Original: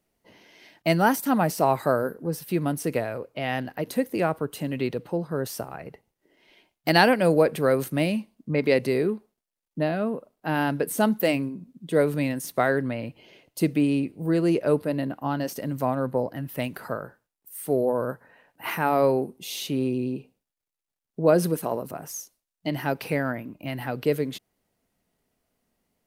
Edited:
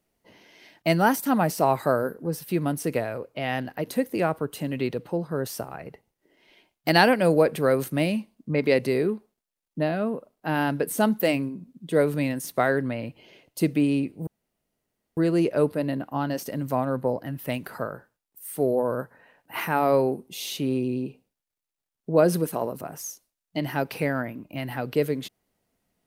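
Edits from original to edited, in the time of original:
14.27 insert room tone 0.90 s

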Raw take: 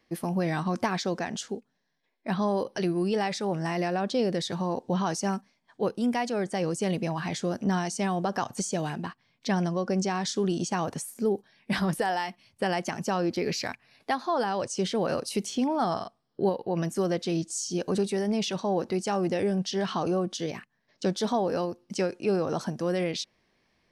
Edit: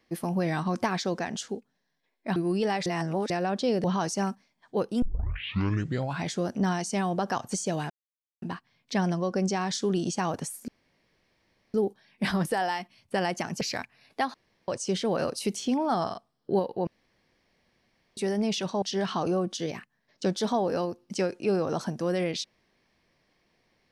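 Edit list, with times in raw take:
2.36–2.87 cut
3.37–3.81 reverse
4.35–4.9 cut
6.08 tape start 1.24 s
8.96 insert silence 0.52 s
11.22 insert room tone 1.06 s
13.09–13.51 cut
14.24–14.58 room tone
16.77–18.07 room tone
18.72–19.62 cut

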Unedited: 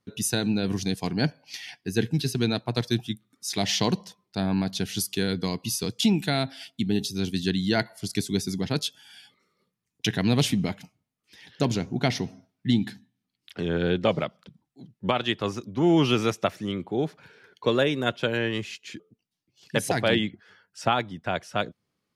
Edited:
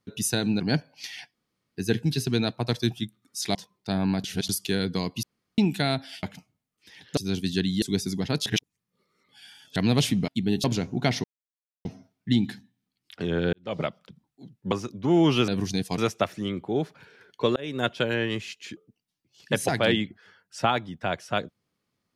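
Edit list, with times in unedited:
0.6–1.1 move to 16.21
1.84 insert room tone 0.42 s
3.63–4.03 cut
4.72–4.97 reverse
5.71–6.06 room tone
6.71–7.07 swap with 10.69–11.63
7.72–8.23 cut
8.87–10.17 reverse
12.23 insert silence 0.61 s
13.91–14.21 fade in quadratic
15.1–15.45 cut
17.79–18.06 fade in

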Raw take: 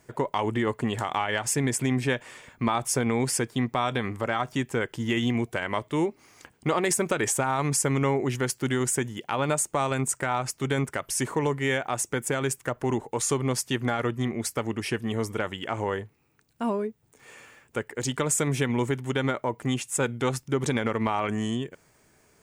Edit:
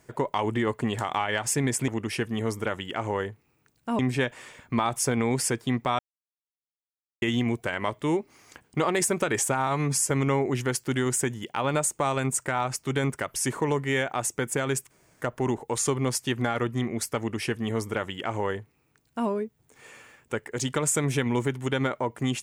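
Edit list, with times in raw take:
3.88–5.11 mute
7.56–7.85 stretch 1.5×
12.65 insert room tone 0.31 s
14.61–16.72 copy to 1.88

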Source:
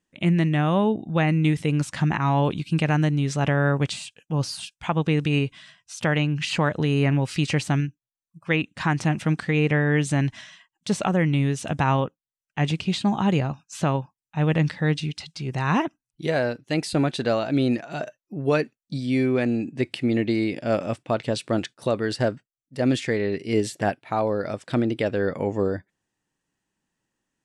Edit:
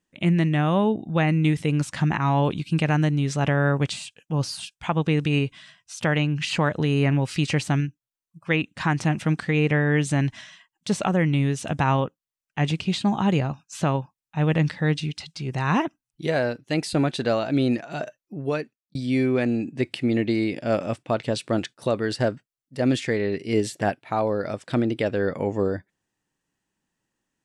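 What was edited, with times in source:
18.22–18.95 fade out linear

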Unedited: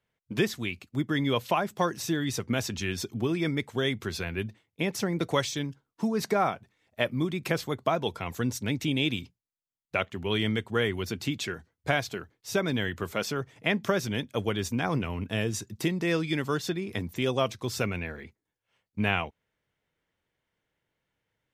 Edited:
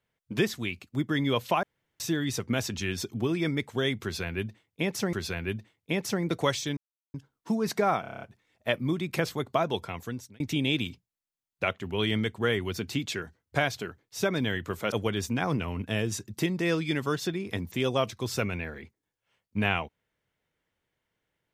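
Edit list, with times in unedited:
1.63–2 room tone
4.03–5.13 loop, 2 plays
5.67 insert silence 0.37 s
6.54 stutter 0.03 s, 8 plays
8.11–8.72 fade out
13.24–14.34 cut

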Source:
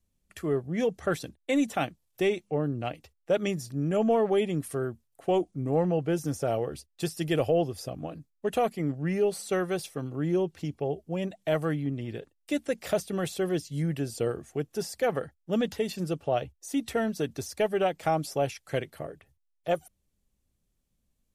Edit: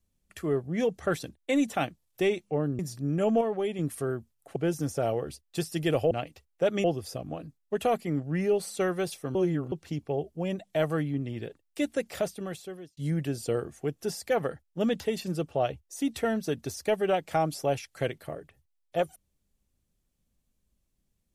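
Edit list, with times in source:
2.79–3.52 move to 7.56
4.14–4.52 gain -5 dB
5.29–6.01 cut
10.07–10.44 reverse
12.7–13.69 fade out

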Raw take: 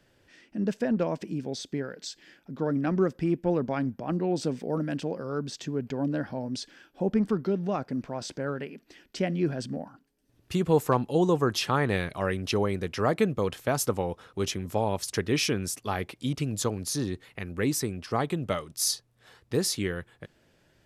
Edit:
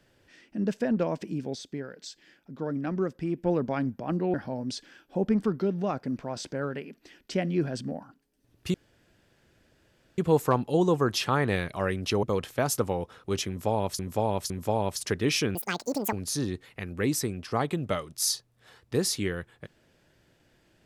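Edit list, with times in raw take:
1.55–3.37 gain -4 dB
4.34–6.19 cut
10.59 insert room tone 1.44 s
12.64–13.32 cut
14.57–15.08 loop, 3 plays
15.62–16.72 speed 191%

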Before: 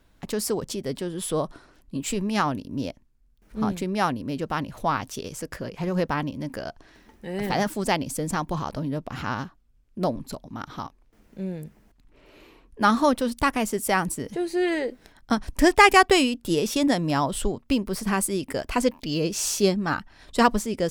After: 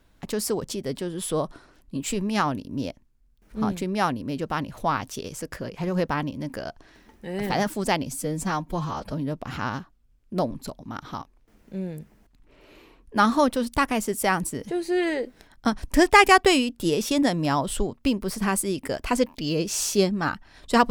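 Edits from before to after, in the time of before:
8.07–8.77 stretch 1.5×

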